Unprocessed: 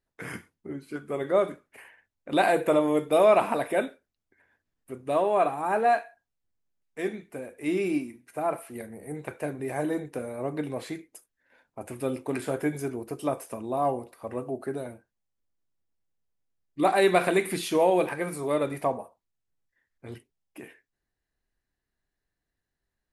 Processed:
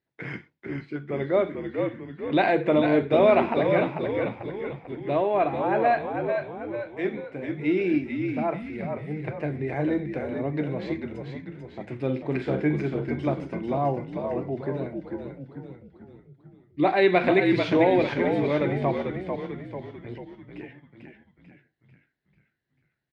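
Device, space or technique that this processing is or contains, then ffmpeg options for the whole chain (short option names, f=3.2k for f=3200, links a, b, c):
frequency-shifting delay pedal into a guitar cabinet: -filter_complex "[0:a]asettb=1/sr,asplit=3[a][b][c];[a]atrim=end=12.014[d];[b]atrim=start=12.01:end=12.85,asetpts=PTS-STARTPTS,afade=t=in:d=0.004:c=qsin,afade=t=out:st=0.836:d=0.004:c=qsin,asplit=2[e][f];[f]adelay=46,volume=-8.5dB[g];[e][g]amix=inputs=2:normalize=0,atrim=end_sample=37044[h];[c]atrim=start=12.846[i];[d][h]acrossfade=d=0.004:c1=hsin:c2=qsin[j];[j][i]acrossfade=d=0.004:c1=qsin:c2=hsin,asplit=7[k][l][m][n][o][p][q];[l]adelay=443,afreqshift=-62,volume=-5.5dB[r];[m]adelay=886,afreqshift=-124,volume=-11.3dB[s];[n]adelay=1329,afreqshift=-186,volume=-17.2dB[t];[o]adelay=1772,afreqshift=-248,volume=-23dB[u];[p]adelay=2215,afreqshift=-310,volume=-28.9dB[v];[q]adelay=2658,afreqshift=-372,volume=-34.7dB[w];[k][r][s][t][u][v][w]amix=inputs=7:normalize=0,highpass=94,equalizer=f=140:t=q:w=4:g=10,equalizer=f=330:t=q:w=4:g=5,equalizer=f=1.2k:t=q:w=4:g=-5,equalizer=f=2.1k:t=q:w=4:g=5,lowpass=f=4.4k:w=0.5412,lowpass=f=4.4k:w=1.3066"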